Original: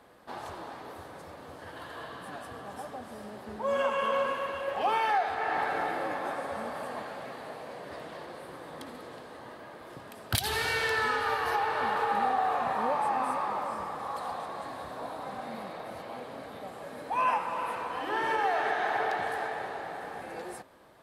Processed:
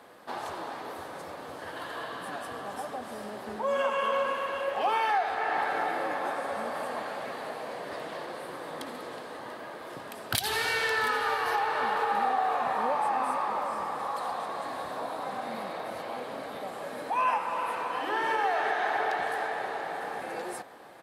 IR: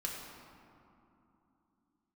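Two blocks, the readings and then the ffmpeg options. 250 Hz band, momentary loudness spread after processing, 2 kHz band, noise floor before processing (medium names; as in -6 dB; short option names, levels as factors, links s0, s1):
+0.5 dB, 13 LU, +1.5 dB, -47 dBFS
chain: -filter_complex "[0:a]highpass=f=250:p=1,asplit=2[s0][s1];[s1]acompressor=threshold=0.0126:ratio=6,volume=1.26[s2];[s0][s2]amix=inputs=2:normalize=0,aecho=1:1:689:0.141,volume=0.841"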